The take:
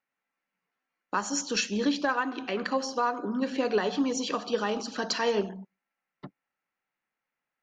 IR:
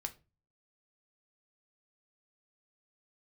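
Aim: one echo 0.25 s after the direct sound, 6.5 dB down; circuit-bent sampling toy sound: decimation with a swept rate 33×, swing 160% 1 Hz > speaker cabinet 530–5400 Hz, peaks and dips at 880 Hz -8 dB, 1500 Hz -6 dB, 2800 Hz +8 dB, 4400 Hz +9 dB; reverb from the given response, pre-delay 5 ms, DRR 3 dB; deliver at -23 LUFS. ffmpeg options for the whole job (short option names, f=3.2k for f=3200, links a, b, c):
-filter_complex "[0:a]aecho=1:1:250:0.473,asplit=2[a][b];[1:a]atrim=start_sample=2205,adelay=5[c];[b][c]afir=irnorm=-1:irlink=0,volume=-1.5dB[d];[a][d]amix=inputs=2:normalize=0,acrusher=samples=33:mix=1:aa=0.000001:lfo=1:lforange=52.8:lforate=1,highpass=530,equalizer=f=880:t=q:w=4:g=-8,equalizer=f=1.5k:t=q:w=4:g=-6,equalizer=f=2.8k:t=q:w=4:g=8,equalizer=f=4.4k:t=q:w=4:g=9,lowpass=f=5.4k:w=0.5412,lowpass=f=5.4k:w=1.3066,volume=7.5dB"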